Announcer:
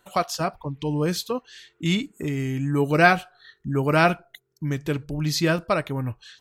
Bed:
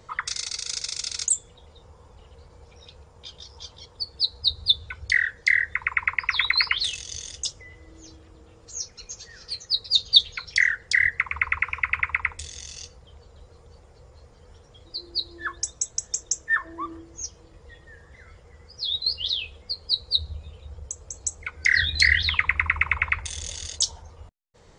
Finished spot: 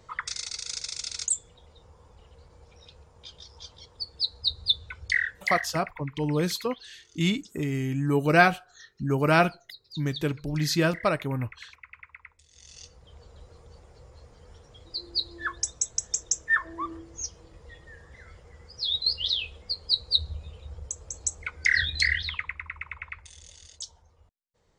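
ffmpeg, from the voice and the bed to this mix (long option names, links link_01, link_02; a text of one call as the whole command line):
ffmpeg -i stem1.wav -i stem2.wav -filter_complex "[0:a]adelay=5350,volume=-2dB[link_01];[1:a]volume=19dB,afade=type=out:start_time=5.22:duration=0.75:silence=0.105925,afade=type=in:start_time=12.48:duration=0.77:silence=0.0707946,afade=type=out:start_time=21.37:duration=1.22:silence=0.177828[link_02];[link_01][link_02]amix=inputs=2:normalize=0" out.wav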